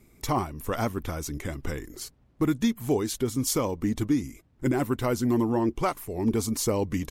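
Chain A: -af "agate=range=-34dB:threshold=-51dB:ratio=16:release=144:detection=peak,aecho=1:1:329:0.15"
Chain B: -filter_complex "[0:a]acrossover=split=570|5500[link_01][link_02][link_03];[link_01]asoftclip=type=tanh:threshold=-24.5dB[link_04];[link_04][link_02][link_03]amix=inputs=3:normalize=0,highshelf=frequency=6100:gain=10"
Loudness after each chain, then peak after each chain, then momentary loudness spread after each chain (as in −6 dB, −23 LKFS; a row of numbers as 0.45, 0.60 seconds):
−28.0, −28.5 LKFS; −14.0, −7.0 dBFS; 10, 11 LU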